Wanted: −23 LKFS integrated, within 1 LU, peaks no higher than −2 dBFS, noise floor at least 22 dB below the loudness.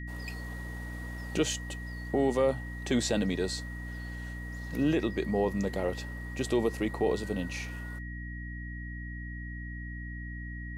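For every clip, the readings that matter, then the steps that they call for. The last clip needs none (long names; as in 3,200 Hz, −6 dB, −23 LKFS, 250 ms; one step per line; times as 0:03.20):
mains hum 60 Hz; hum harmonics up to 300 Hz; level of the hum −37 dBFS; interfering tone 1,900 Hz; level of the tone −44 dBFS; integrated loudness −33.0 LKFS; sample peak −16.0 dBFS; target loudness −23.0 LKFS
→ mains-hum notches 60/120/180/240/300 Hz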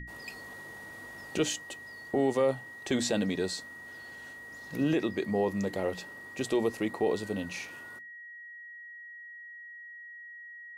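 mains hum none found; interfering tone 1,900 Hz; level of the tone −44 dBFS
→ notch filter 1,900 Hz, Q 30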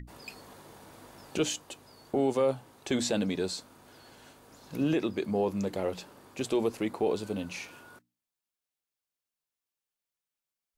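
interfering tone none found; integrated loudness −31.5 LKFS; sample peak −17.5 dBFS; target loudness −23.0 LKFS
→ level +8.5 dB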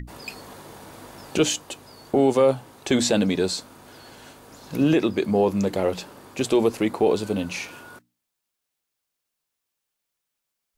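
integrated loudness −23.0 LKFS; sample peak −9.0 dBFS; background noise floor −82 dBFS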